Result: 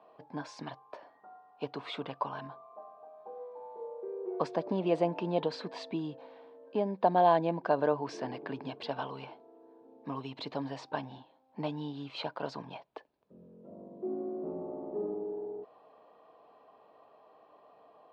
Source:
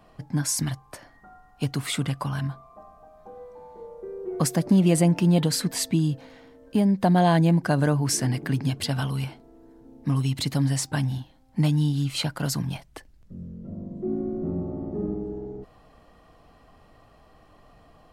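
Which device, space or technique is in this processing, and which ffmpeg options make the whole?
phone earpiece: -af "highpass=410,equalizer=f=440:t=q:w=4:g=6,equalizer=f=630:t=q:w=4:g=4,equalizer=f=960:t=q:w=4:g=6,equalizer=f=1.4k:t=q:w=4:g=-5,equalizer=f=2k:t=q:w=4:g=-10,equalizer=f=3k:t=q:w=4:g=-5,lowpass=f=3.4k:w=0.5412,lowpass=f=3.4k:w=1.3066,volume=-4dB"

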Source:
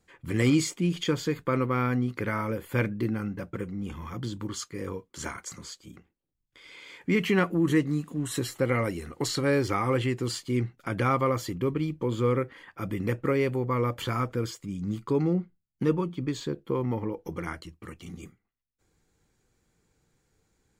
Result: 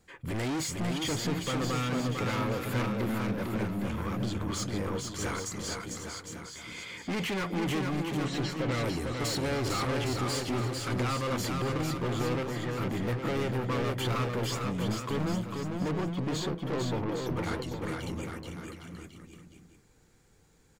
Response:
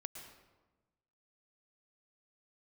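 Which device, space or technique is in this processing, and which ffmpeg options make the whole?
saturation between pre-emphasis and de-emphasis: -filter_complex "[0:a]highshelf=f=11k:g=9,asoftclip=type=tanh:threshold=-35dB,highshelf=f=11k:g=-9,asettb=1/sr,asplit=3[a][b][c];[a]atrim=end=8.084[d];[b]atrim=start=8.08:end=8.72,asetpts=PTS-STARTPTS,afade=t=in:d=0.004:c=qsin,afade=t=out:st=0.636:d=0.004:c=qsin,lowpass=f=5.6k:w=0.5412,lowpass=f=5.6k:w=1.3066[e];[c]atrim=start=8.716[f];[d][e]acrossfade=d=0.004:c1=hsin:c2=qsin[g];[g][f]acrossfade=d=0.004:c1=qsin:c2=hsin,aecho=1:1:450|810|1098|1328|1513:0.631|0.398|0.251|0.158|0.1,volume=5dB"

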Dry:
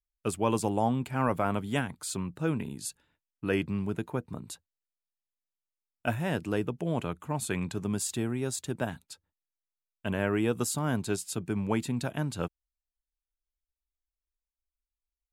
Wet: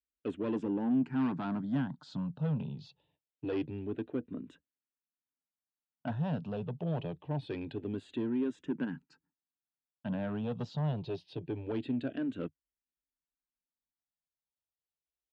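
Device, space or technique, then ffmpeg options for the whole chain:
barber-pole phaser into a guitar amplifier: -filter_complex "[0:a]asplit=2[a][b];[b]afreqshift=-0.25[c];[a][c]amix=inputs=2:normalize=1,asoftclip=type=tanh:threshold=-30.5dB,highpass=81,equalizer=f=84:t=q:w=4:g=-8,equalizer=f=150:t=q:w=4:g=6,equalizer=f=270:t=q:w=4:g=9,equalizer=f=1.2k:t=q:w=4:g=-7,equalizer=f=2.2k:t=q:w=4:g=-10,lowpass=f=3.5k:w=0.5412,lowpass=f=3.5k:w=1.3066"

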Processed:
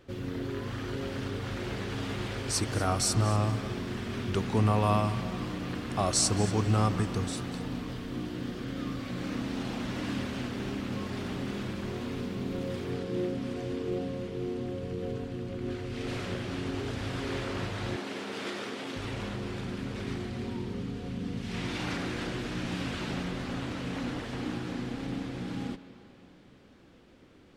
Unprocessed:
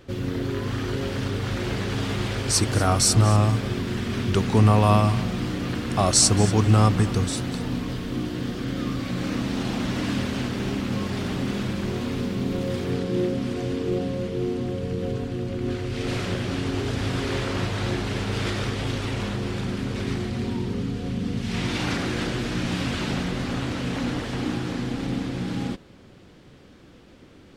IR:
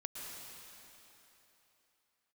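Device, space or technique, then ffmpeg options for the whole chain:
filtered reverb send: -filter_complex "[0:a]asplit=2[a][b];[b]highpass=190,lowpass=4k[c];[1:a]atrim=start_sample=2205[d];[c][d]afir=irnorm=-1:irlink=0,volume=-8dB[e];[a][e]amix=inputs=2:normalize=0,asettb=1/sr,asplit=3[f][g][h];[f]atrim=end=17.964[i];[g]atrim=start=17.96:end=18.96,asetpts=PTS-STARTPTS,afade=t=in:d=0.004:c=qsin,afade=t=out:st=0.996:d=0.004:c=qsin,highpass=f=200:w=0.5412,highpass=f=200:w=1.3066[j];[h]atrim=start=18.956[k];[i][j]acrossfade=d=0.004:c1=hsin:c2=qsin[l];[l][k]acrossfade=d=0.004:c1=qsin:c2=hsin,volume=-8.5dB"

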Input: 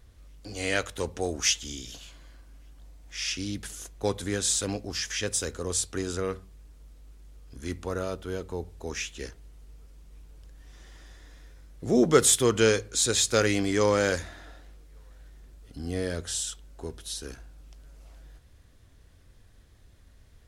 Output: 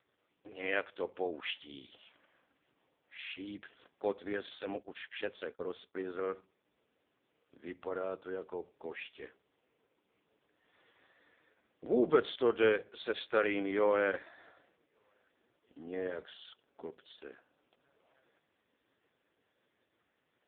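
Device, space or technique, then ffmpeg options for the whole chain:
telephone: -filter_complex "[0:a]asplit=3[a][b][c];[a]afade=t=out:st=4.81:d=0.02[d];[b]agate=range=-44dB:threshold=-34dB:ratio=16:detection=peak,afade=t=in:st=4.81:d=0.02,afade=t=out:st=5.95:d=0.02[e];[c]afade=t=in:st=5.95:d=0.02[f];[d][e][f]amix=inputs=3:normalize=0,highpass=340,lowpass=3.4k,volume=-3.5dB" -ar 8000 -c:a libopencore_amrnb -b:a 4750

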